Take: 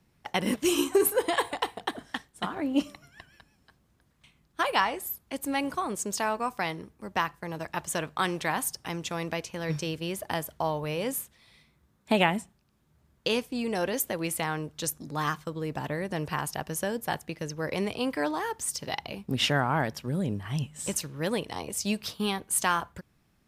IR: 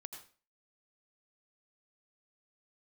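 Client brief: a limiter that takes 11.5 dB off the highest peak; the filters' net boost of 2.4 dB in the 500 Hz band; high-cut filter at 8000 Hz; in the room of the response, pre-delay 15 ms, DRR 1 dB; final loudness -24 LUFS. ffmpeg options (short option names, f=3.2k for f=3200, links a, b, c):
-filter_complex "[0:a]lowpass=8k,equalizer=f=500:t=o:g=3,alimiter=limit=-19.5dB:level=0:latency=1,asplit=2[a][b];[1:a]atrim=start_sample=2205,adelay=15[c];[b][c]afir=irnorm=-1:irlink=0,volume=3.5dB[d];[a][d]amix=inputs=2:normalize=0,volume=5.5dB"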